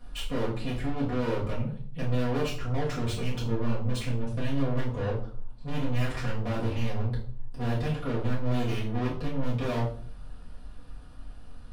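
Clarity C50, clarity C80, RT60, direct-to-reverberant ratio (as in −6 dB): 7.0 dB, 11.0 dB, 0.50 s, −8.0 dB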